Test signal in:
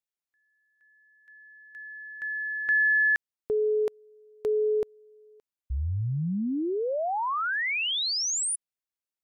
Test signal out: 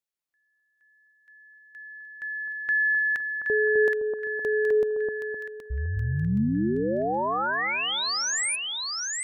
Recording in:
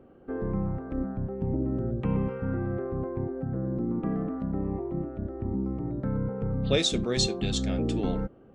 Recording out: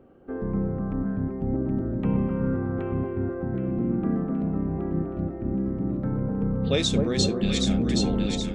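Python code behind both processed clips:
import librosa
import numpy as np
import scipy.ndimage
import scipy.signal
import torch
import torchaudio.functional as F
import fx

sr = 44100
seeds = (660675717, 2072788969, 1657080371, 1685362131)

p1 = fx.dynamic_eq(x, sr, hz=210.0, q=2.9, threshold_db=-41.0, ratio=4.0, max_db=5)
y = p1 + fx.echo_split(p1, sr, split_hz=1300.0, low_ms=257, high_ms=772, feedback_pct=52, wet_db=-3.5, dry=0)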